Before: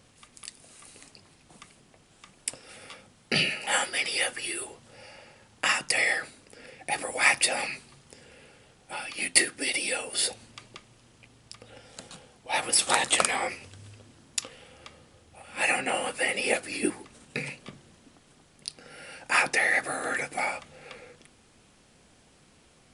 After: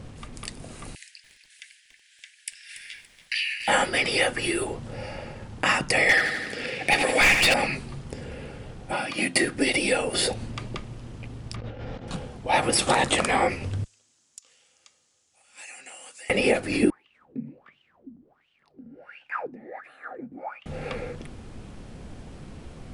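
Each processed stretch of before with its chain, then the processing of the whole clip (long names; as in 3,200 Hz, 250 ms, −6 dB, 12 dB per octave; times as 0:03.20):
0:00.95–0:03.68: Butterworth high-pass 1,600 Hz 96 dB per octave + downward compressor 1.5 to 1, threshold −42 dBFS + feedback echo at a low word length 285 ms, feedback 35%, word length 9 bits, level −12 dB
0:06.09–0:07.54: meter weighting curve D + gain into a clipping stage and back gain 16.5 dB + repeating echo 83 ms, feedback 54%, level −8 dB
0:08.92–0:09.44: high-pass filter 150 Hz + notch comb filter 440 Hz
0:11.56–0:12.08: linear delta modulator 64 kbit/s, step −47 dBFS + high-frequency loss of the air 210 metres + compressor whose output falls as the input rises −54 dBFS
0:13.84–0:16.30: resonant band-pass 6,900 Hz, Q 3.4 + downward compressor 8 to 1, threshold −44 dBFS
0:16.90–0:20.66: low-shelf EQ 94 Hz +9 dB + downward compressor 1.5 to 1, threshold −40 dBFS + LFO wah 1.4 Hz 220–3,000 Hz, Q 11
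whole clip: spectral tilt −3 dB per octave; downward compressor 1.5 to 1, threshold −37 dBFS; boost into a limiter +20 dB; level −8.5 dB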